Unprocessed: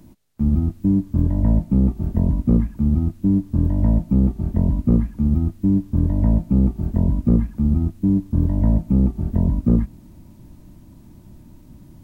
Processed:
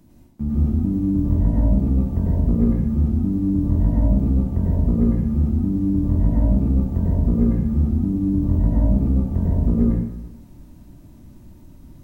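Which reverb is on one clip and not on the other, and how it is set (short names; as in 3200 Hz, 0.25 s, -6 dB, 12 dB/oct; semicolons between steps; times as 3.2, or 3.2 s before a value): plate-style reverb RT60 0.95 s, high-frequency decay 0.75×, pre-delay 85 ms, DRR -5 dB; gain -6 dB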